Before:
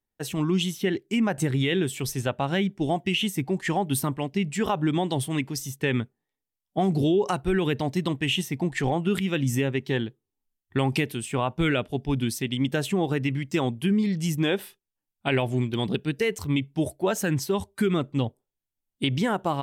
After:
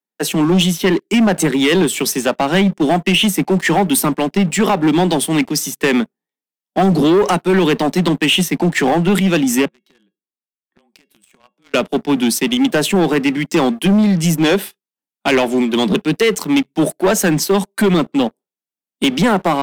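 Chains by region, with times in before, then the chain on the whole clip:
0:09.65–0:11.74: downward compressor 10 to 1, threshold −38 dBFS + frequency shifter −24 Hz + tuned comb filter 550 Hz, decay 0.23 s, mix 80%
whole clip: Butterworth high-pass 160 Hz 96 dB per octave; leveller curve on the samples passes 3; level +3.5 dB

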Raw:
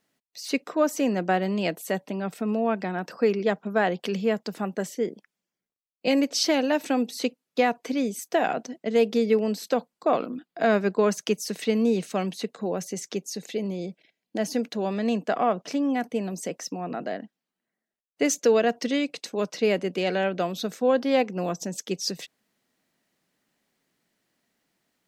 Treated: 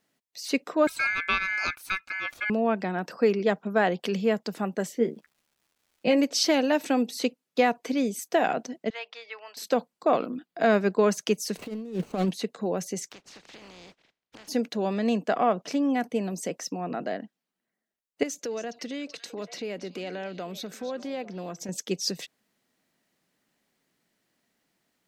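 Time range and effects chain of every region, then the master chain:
0:00.87–0:02.50: parametric band 9,300 Hz −10 dB 0.43 octaves + ring modulation 1,900 Hz
0:04.91–0:06.18: bass and treble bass +4 dB, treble −11 dB + surface crackle 390 per second −58 dBFS + double-tracking delay 13 ms −8 dB
0:08.90–0:09.57: high-pass filter 930 Hz 24 dB per octave + high-frequency loss of the air 230 metres
0:11.57–0:12.31: running median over 25 samples + compressor whose output falls as the input rises −28 dBFS, ratio −0.5
0:13.11–0:14.47: compressing power law on the bin magnitudes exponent 0.28 + high-frequency loss of the air 140 metres + downward compressor 8 to 1, threshold −45 dBFS
0:18.23–0:21.69: downward compressor 2.5 to 1, threshold −36 dBFS + echo through a band-pass that steps 280 ms, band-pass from 4,700 Hz, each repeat −1.4 octaves, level −8.5 dB
whole clip: no processing

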